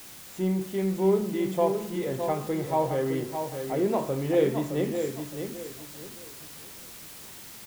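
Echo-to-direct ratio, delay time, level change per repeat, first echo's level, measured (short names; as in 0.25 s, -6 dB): -6.5 dB, 0.615 s, -10.5 dB, -7.0 dB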